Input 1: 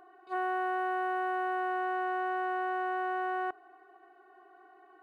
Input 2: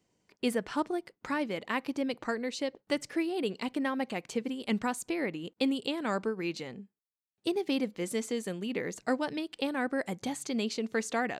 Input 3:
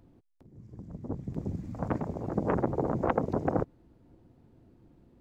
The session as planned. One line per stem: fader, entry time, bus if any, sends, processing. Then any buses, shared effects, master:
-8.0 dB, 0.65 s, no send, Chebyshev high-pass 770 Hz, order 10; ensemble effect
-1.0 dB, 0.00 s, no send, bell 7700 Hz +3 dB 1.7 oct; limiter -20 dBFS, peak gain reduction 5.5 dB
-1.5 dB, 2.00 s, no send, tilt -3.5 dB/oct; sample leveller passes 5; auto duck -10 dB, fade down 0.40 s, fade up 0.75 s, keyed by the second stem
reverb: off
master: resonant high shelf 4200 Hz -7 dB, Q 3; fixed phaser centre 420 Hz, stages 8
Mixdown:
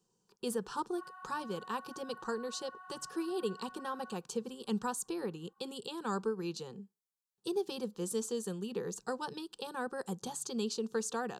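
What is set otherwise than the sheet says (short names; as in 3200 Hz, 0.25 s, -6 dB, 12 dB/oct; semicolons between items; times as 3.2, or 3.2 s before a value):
stem 3: muted; master: missing resonant high shelf 4200 Hz -7 dB, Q 3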